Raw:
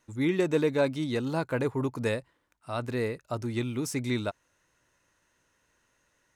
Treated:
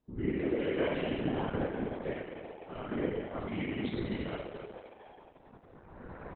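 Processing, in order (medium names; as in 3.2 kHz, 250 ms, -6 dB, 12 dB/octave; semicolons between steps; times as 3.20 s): knee-point frequency compression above 1.8 kHz 1.5:1; recorder AGC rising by 16 dB/s; level-controlled noise filter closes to 510 Hz, open at -24.5 dBFS; 0.58–1.02 s: peaking EQ 2.9 kHz +9.5 dB 2 oct; compression 2.5:1, threshold -37 dBFS, peak gain reduction 12 dB; 1.65–2.77 s: static phaser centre 360 Hz, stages 4; frequency-shifting echo 227 ms, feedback 61%, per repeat +87 Hz, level -10 dB; spring tank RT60 1.2 s, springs 31/35 ms, chirp 80 ms, DRR -7 dB; whisper effect; 3.47–3.94 s: cabinet simulation 110–3700 Hz, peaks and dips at 130 Hz -6 dB, 500 Hz -5 dB, 880 Hz -3 dB, 1.3 kHz -4 dB, 2.2 kHz +10 dB, 3.3 kHz +9 dB; trim -4 dB; Opus 8 kbps 48 kHz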